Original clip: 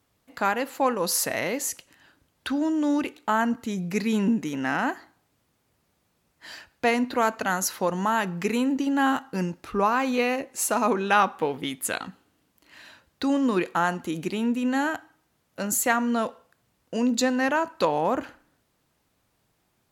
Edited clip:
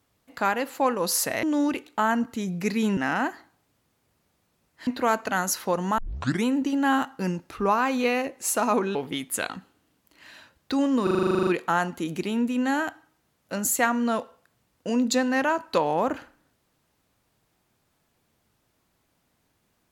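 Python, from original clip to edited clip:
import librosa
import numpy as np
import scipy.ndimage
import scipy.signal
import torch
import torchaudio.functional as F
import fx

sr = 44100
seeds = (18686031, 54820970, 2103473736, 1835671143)

y = fx.edit(x, sr, fx.cut(start_s=1.43, length_s=1.3),
    fx.cut(start_s=4.27, length_s=0.33),
    fx.cut(start_s=6.5, length_s=0.51),
    fx.tape_start(start_s=8.12, length_s=0.47),
    fx.cut(start_s=11.09, length_s=0.37),
    fx.stutter(start_s=13.54, slice_s=0.04, count=12), tone=tone)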